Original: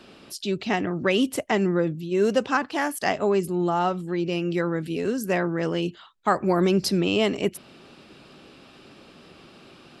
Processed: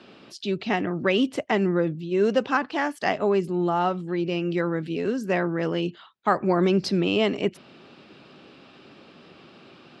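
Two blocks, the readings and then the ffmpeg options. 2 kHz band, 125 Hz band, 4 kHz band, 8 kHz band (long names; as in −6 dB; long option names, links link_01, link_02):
0.0 dB, −0.5 dB, −1.5 dB, can't be measured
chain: -af "highpass=100,lowpass=4600"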